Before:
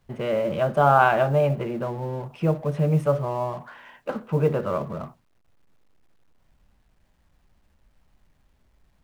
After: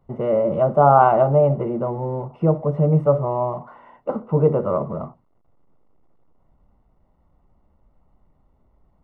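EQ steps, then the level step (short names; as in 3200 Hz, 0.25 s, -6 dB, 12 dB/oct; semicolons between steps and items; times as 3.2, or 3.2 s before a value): polynomial smoothing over 65 samples; low shelf 150 Hz -3.5 dB; +5.5 dB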